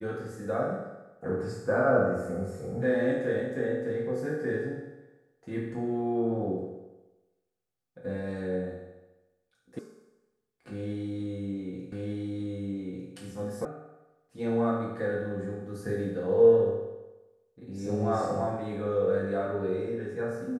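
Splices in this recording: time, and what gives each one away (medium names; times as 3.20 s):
9.79 s: sound stops dead
11.92 s: repeat of the last 1.2 s
13.65 s: sound stops dead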